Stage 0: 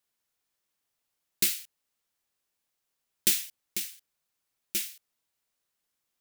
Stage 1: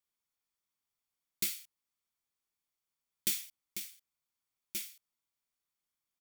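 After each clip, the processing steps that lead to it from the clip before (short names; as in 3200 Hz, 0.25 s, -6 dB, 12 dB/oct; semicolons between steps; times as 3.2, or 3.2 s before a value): comb 0.9 ms, depth 31%; gain -8.5 dB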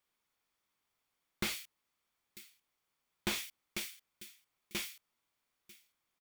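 tone controls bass -3 dB, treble -8 dB; echo 0.945 s -23.5 dB; slew limiter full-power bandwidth 32 Hz; gain +10 dB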